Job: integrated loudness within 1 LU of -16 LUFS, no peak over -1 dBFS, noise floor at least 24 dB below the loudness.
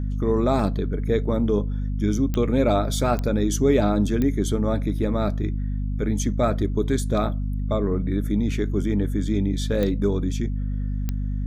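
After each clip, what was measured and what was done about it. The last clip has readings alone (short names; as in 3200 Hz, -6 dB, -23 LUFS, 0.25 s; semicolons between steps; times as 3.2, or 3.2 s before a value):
clicks 5; hum 50 Hz; harmonics up to 250 Hz; hum level -23 dBFS; loudness -23.5 LUFS; peak -7.5 dBFS; loudness target -16.0 LUFS
-> de-click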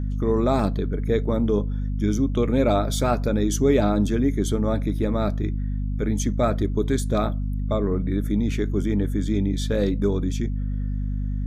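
clicks 0; hum 50 Hz; harmonics up to 250 Hz; hum level -23 dBFS
-> notches 50/100/150/200/250 Hz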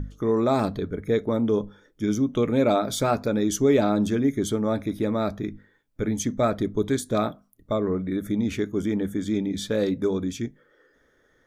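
hum none; loudness -25.0 LUFS; peak -9.0 dBFS; loudness target -16.0 LUFS
-> gain +9 dB; limiter -1 dBFS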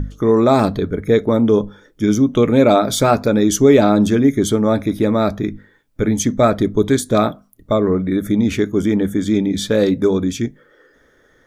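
loudness -16.0 LUFS; peak -1.0 dBFS; noise floor -55 dBFS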